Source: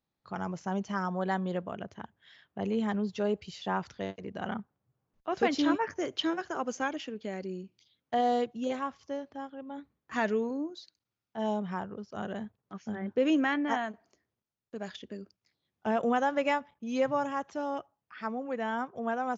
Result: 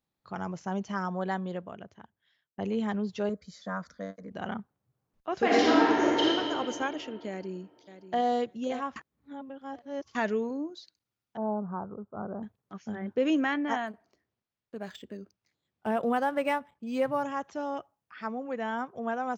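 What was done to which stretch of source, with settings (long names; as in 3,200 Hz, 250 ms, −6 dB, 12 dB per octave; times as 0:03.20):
0:01.17–0:02.58: fade out
0:03.29–0:04.31: phaser with its sweep stopped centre 560 Hz, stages 8
0:05.41–0:06.24: thrown reverb, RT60 2.7 s, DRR −6.5 dB
0:07.29–0:08.22: delay throw 580 ms, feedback 15%, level −12.5 dB
0:08.96–0:10.15: reverse
0:11.37–0:12.43: Butterworth low-pass 1,400 Hz 72 dB per octave
0:13.87–0:17.23: linearly interpolated sample-rate reduction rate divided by 4×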